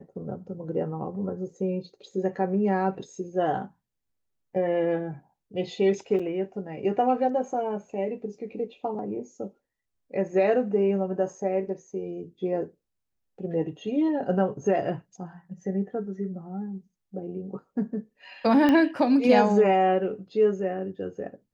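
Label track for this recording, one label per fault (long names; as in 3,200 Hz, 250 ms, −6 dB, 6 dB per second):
6.190000	6.200000	drop-out 5.4 ms
18.690000	18.690000	click −12 dBFS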